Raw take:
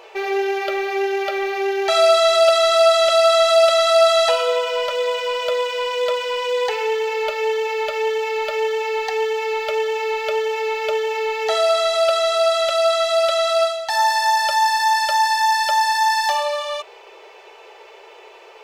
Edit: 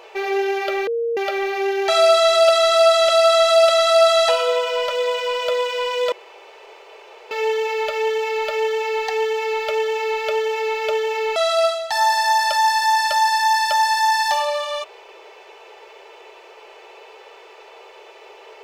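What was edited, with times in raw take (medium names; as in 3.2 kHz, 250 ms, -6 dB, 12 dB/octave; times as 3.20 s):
0.87–1.17 s: bleep 465 Hz -19 dBFS
6.12–7.31 s: room tone
11.36–13.34 s: delete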